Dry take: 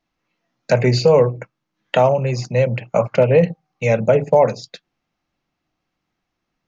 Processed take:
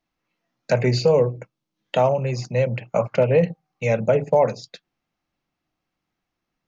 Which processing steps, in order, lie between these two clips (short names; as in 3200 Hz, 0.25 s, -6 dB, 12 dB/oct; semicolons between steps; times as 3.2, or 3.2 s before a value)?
1.11–1.98 EQ curve 460 Hz 0 dB, 1700 Hz -7 dB, 3500 Hz +1 dB; gain -4 dB